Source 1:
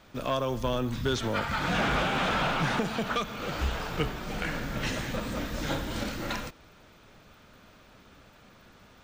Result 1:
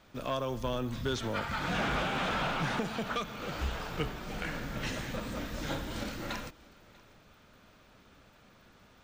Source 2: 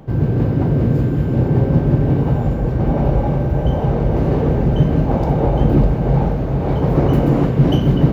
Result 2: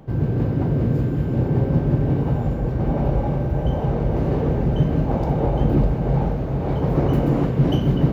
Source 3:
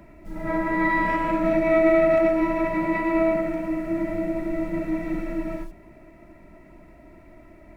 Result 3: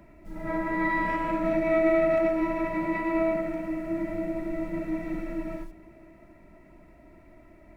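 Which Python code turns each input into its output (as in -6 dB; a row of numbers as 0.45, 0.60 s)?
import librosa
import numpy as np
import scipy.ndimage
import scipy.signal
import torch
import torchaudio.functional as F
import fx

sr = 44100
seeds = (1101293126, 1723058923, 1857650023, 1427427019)

y = x + 10.0 ** (-23.5 / 20.0) * np.pad(x, (int(641 * sr / 1000.0), 0))[:len(x)]
y = y * librosa.db_to_amplitude(-4.5)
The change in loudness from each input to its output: -4.5, -4.5, -4.5 LU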